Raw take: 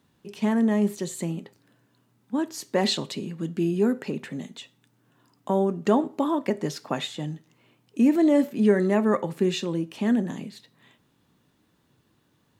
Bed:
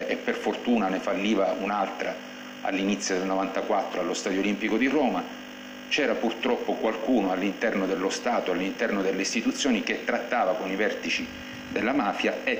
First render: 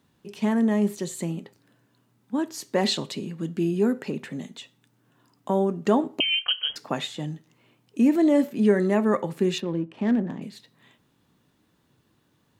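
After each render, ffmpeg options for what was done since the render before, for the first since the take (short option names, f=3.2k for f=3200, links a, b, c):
-filter_complex "[0:a]asettb=1/sr,asplit=3[a][b][c];[a]atrim=end=6.204[d];[b]atrim=start=6.2:end=6.76,asetpts=PTS-STARTPTS,afade=t=in:d=0.004:c=qsin,afade=t=out:st=0.556:d=0.004:c=qsin,lowpass=f=2.9k:t=q:w=0.5098,lowpass=f=2.9k:t=q:w=0.6013,lowpass=f=2.9k:t=q:w=0.9,lowpass=f=2.9k:t=q:w=2.563,afreqshift=-3400[e];[c]atrim=start=6.756[f];[d][e]acrossfade=d=0.004:c1=hsin:c2=qsin[g];[g][f]acrossfade=d=0.004:c1=qsin:c2=hsin,asettb=1/sr,asplit=3[h][i][j];[h]atrim=end=9.584[k];[i]atrim=start=9.58:end=10.42,asetpts=PTS-STARTPTS,afade=t=in:d=0.004:c=qsin,afade=t=out:st=0.836:d=0.004:c=qsin,adynamicsmooth=sensitivity=3.5:basefreq=1.5k[l];[j]atrim=start=10.416[m];[k][l]acrossfade=d=0.004:c1=hsin:c2=qsin[n];[n][m]acrossfade=d=0.004:c1=qsin:c2=hsin"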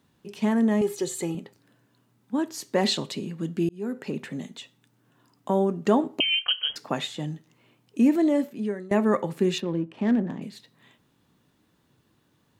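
-filter_complex "[0:a]asettb=1/sr,asplit=3[a][b][c];[a]atrim=end=0.814[d];[b]atrim=start=0.81:end=1.35,asetpts=PTS-STARTPTS,afade=t=in:d=0.004:c=qsin,afade=t=out:st=0.536:d=0.004:c=qsin,aecho=1:1:2.4:0.81,atrim=end_sample=23814[e];[c]atrim=start=1.346[f];[d][e]acrossfade=d=0.004:c1=hsin:c2=qsin[g];[g][f]acrossfade=d=0.004:c1=qsin:c2=hsin,asplit=3[h][i][j];[h]atrim=end=3.69,asetpts=PTS-STARTPTS,afade=t=out:st=3.686:d=0.004:c=hsin[k];[i]atrim=start=3.69:end=8.91,asetpts=PTS-STARTPTS,afade=t=in:d=0.47,afade=t=out:st=4.36:d=0.86:silence=0.0794328[l];[j]atrim=start=8.91,asetpts=PTS-STARTPTS,afade=t=in:d=0.004:c=hsin:silence=0.0794328[m];[k][l][m]concat=n=3:v=0:a=1"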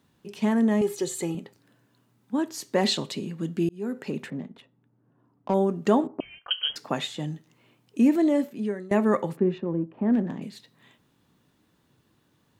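-filter_complex "[0:a]asettb=1/sr,asplit=3[a][b][c];[a]atrim=end=4.304[d];[b]atrim=start=4.3:end=5.54,asetpts=PTS-STARTPTS,afade=t=in:d=0.004:c=qsin,afade=t=out:st=1.236:d=0.004:c=qsin,adynamicsmooth=sensitivity=4:basefreq=980[e];[c]atrim=start=5.536[f];[d][e]acrossfade=d=0.004:c1=hsin:c2=qsin[g];[g][f]acrossfade=d=0.004:c1=qsin:c2=hsin,asettb=1/sr,asplit=3[h][i][j];[h]atrim=end=6.074[k];[i]atrim=start=6.07:end=6.51,asetpts=PTS-STARTPTS,afade=t=in:d=0.004:c=qsin,afade=t=out:st=0.436:d=0.004:c=qsin,lowpass=f=1.4k:w=0.5412,lowpass=f=1.4k:w=1.3066[l];[j]atrim=start=6.506[m];[k][l]acrossfade=d=0.004:c1=hsin:c2=qsin[n];[n][m]acrossfade=d=0.004:c1=qsin:c2=hsin,asplit=3[o][p][q];[o]afade=t=out:st=9.35:d=0.02[r];[p]lowpass=1.2k,afade=t=in:st=9.35:d=0.02,afade=t=out:st=10.12:d=0.02[s];[q]afade=t=in:st=10.12:d=0.02[t];[r][s][t]amix=inputs=3:normalize=0"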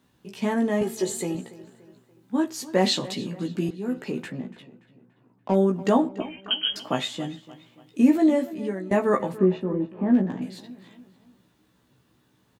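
-filter_complex "[0:a]asplit=2[a][b];[b]adelay=16,volume=-3dB[c];[a][c]amix=inputs=2:normalize=0,asplit=2[d][e];[e]adelay=288,lowpass=f=4.9k:p=1,volume=-17.5dB,asplit=2[f][g];[g]adelay=288,lowpass=f=4.9k:p=1,volume=0.46,asplit=2[h][i];[i]adelay=288,lowpass=f=4.9k:p=1,volume=0.46,asplit=2[j][k];[k]adelay=288,lowpass=f=4.9k:p=1,volume=0.46[l];[d][f][h][j][l]amix=inputs=5:normalize=0"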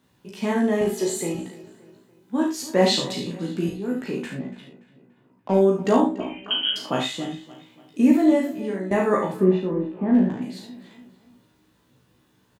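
-filter_complex "[0:a]asplit=2[a][b];[b]adelay=38,volume=-8dB[c];[a][c]amix=inputs=2:normalize=0,aecho=1:1:36|70:0.531|0.473"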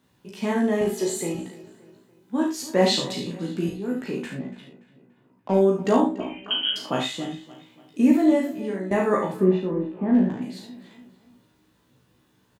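-af "volume=-1dB"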